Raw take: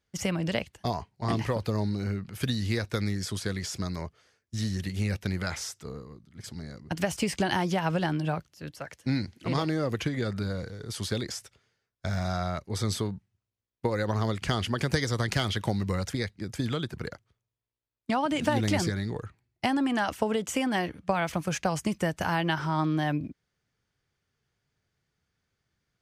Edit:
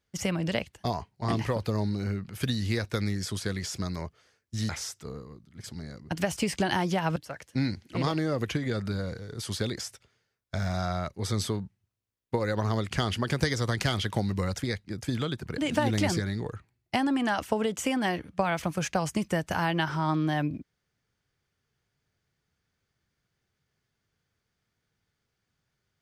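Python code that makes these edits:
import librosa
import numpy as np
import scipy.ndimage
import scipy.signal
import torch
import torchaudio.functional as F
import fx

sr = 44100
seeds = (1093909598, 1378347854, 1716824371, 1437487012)

y = fx.edit(x, sr, fx.cut(start_s=4.69, length_s=0.8),
    fx.cut(start_s=7.96, length_s=0.71),
    fx.cut(start_s=17.09, length_s=1.19), tone=tone)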